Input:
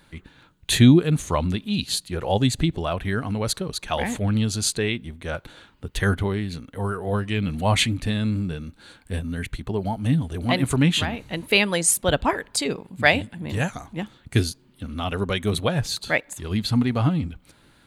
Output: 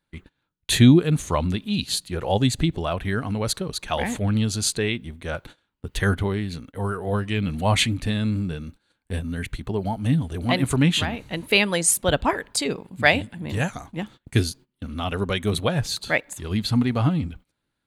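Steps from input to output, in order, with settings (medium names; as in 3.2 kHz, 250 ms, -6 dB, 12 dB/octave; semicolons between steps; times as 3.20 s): gate -42 dBFS, range -23 dB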